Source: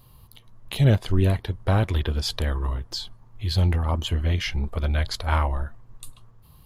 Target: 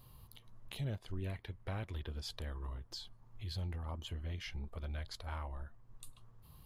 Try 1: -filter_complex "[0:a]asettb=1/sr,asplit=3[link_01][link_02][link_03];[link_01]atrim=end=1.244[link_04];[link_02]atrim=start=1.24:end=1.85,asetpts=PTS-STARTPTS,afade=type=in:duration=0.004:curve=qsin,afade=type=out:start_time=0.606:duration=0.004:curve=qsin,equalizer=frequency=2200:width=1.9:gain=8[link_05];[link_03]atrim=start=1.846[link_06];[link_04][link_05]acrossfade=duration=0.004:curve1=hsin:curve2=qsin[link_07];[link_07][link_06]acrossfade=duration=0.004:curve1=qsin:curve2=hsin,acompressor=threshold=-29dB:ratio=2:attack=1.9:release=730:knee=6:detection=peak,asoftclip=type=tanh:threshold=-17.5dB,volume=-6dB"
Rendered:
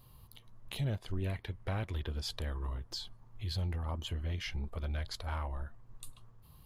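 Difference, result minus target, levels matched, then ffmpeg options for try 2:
downward compressor: peak gain reduction −5.5 dB
-filter_complex "[0:a]asettb=1/sr,asplit=3[link_01][link_02][link_03];[link_01]atrim=end=1.244[link_04];[link_02]atrim=start=1.24:end=1.85,asetpts=PTS-STARTPTS,afade=type=in:duration=0.004:curve=qsin,afade=type=out:start_time=0.606:duration=0.004:curve=qsin,equalizer=frequency=2200:width=1.9:gain=8[link_05];[link_03]atrim=start=1.846[link_06];[link_04][link_05]acrossfade=duration=0.004:curve1=hsin:curve2=qsin[link_07];[link_07][link_06]acrossfade=duration=0.004:curve1=qsin:curve2=hsin,acompressor=threshold=-40dB:ratio=2:attack=1.9:release=730:knee=6:detection=peak,asoftclip=type=tanh:threshold=-17.5dB,volume=-6dB"

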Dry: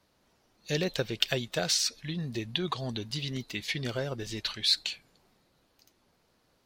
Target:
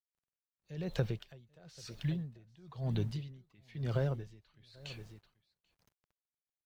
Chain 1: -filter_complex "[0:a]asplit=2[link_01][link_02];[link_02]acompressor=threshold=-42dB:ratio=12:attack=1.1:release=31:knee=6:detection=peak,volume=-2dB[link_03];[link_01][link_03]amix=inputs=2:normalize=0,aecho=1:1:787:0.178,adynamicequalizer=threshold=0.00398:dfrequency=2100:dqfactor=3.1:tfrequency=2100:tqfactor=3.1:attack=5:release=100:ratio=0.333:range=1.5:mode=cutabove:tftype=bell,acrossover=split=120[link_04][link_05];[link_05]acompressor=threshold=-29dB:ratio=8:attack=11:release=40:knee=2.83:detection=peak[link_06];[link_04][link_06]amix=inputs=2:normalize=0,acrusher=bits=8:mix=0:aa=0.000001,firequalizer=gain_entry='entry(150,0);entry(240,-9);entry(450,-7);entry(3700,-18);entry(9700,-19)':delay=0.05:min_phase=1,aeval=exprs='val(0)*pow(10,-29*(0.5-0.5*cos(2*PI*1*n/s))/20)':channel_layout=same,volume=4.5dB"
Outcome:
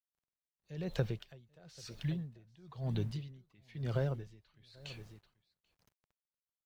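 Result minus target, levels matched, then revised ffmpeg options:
downward compressor: peak gain reduction +7 dB
-filter_complex "[0:a]asplit=2[link_01][link_02];[link_02]acompressor=threshold=-34.5dB:ratio=12:attack=1.1:release=31:knee=6:detection=peak,volume=-2dB[link_03];[link_01][link_03]amix=inputs=2:normalize=0,aecho=1:1:787:0.178,adynamicequalizer=threshold=0.00398:dfrequency=2100:dqfactor=3.1:tfrequency=2100:tqfactor=3.1:attack=5:release=100:ratio=0.333:range=1.5:mode=cutabove:tftype=bell,acrossover=split=120[link_04][link_05];[link_05]acompressor=threshold=-29dB:ratio=8:attack=11:release=40:knee=2.83:detection=peak[link_06];[link_04][link_06]amix=inputs=2:normalize=0,acrusher=bits=8:mix=0:aa=0.000001,firequalizer=gain_entry='entry(150,0);entry(240,-9);entry(450,-7);entry(3700,-18);entry(9700,-19)':delay=0.05:min_phase=1,aeval=exprs='val(0)*pow(10,-29*(0.5-0.5*cos(2*PI*1*n/s))/20)':channel_layout=same,volume=4.5dB"

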